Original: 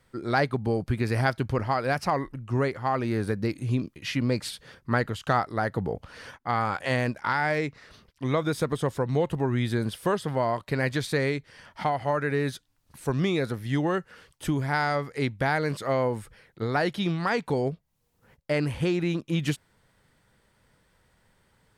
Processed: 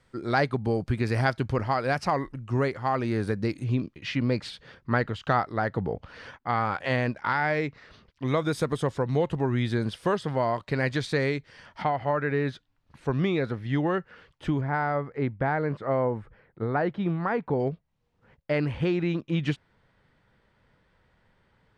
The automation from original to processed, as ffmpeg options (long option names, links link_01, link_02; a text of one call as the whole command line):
ffmpeg -i in.wav -af "asetnsamples=nb_out_samples=441:pad=0,asendcmd='3.64 lowpass f 4300;8.28 lowpass f 10000;8.83 lowpass f 6200;11.82 lowpass f 3200;14.61 lowpass f 1500;17.6 lowpass f 3400',lowpass=8100" out.wav